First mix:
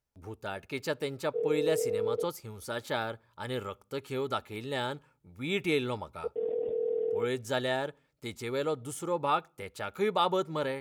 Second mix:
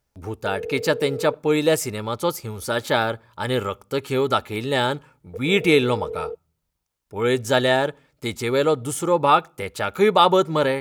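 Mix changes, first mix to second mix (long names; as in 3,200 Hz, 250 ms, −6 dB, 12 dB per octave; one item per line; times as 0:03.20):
speech +12.0 dB
background: entry −0.90 s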